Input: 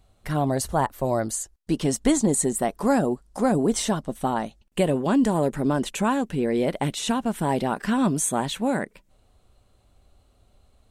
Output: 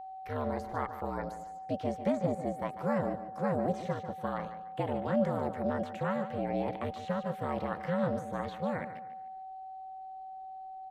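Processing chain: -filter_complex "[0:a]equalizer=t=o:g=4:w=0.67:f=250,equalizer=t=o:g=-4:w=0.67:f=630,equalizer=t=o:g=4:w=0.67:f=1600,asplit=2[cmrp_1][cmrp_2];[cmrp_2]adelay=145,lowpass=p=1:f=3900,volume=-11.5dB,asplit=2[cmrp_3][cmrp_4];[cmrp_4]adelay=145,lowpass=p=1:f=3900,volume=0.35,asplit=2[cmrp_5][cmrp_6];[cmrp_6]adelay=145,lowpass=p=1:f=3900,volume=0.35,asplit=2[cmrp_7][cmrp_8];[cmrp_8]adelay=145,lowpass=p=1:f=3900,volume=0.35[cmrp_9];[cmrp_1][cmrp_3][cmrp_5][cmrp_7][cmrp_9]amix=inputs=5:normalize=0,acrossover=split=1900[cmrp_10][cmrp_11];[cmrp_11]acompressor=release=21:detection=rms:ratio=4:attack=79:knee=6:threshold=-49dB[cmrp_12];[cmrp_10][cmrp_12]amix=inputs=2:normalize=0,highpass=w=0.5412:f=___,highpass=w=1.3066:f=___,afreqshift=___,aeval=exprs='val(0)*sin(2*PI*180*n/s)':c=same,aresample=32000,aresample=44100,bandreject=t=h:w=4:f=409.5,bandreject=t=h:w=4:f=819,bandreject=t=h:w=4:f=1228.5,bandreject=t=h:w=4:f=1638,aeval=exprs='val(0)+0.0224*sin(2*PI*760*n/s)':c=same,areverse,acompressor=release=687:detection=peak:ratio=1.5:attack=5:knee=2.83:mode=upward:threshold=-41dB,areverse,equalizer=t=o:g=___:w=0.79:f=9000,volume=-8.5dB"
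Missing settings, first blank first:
62, 62, 130, -14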